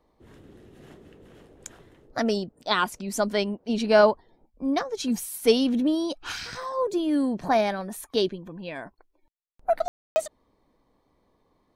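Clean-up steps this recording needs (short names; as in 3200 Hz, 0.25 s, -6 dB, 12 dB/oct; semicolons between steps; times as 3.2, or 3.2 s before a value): room tone fill 9.88–10.16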